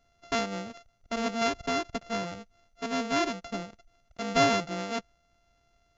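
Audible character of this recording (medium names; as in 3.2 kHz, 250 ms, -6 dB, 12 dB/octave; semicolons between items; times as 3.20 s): a buzz of ramps at a fixed pitch in blocks of 64 samples; MP2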